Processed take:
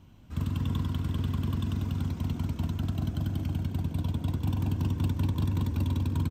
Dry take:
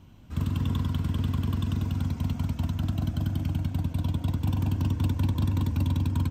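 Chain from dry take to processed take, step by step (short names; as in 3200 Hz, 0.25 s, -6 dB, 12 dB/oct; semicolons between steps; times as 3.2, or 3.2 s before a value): frequency-shifting echo 0.359 s, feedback 51%, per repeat +67 Hz, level -14.5 dB; gain -2.5 dB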